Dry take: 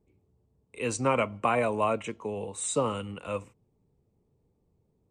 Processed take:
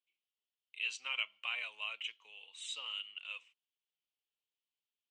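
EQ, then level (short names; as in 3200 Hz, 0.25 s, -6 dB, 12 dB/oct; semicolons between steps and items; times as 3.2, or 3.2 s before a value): ladder band-pass 3300 Hz, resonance 70%; air absorption 67 m; +8.5 dB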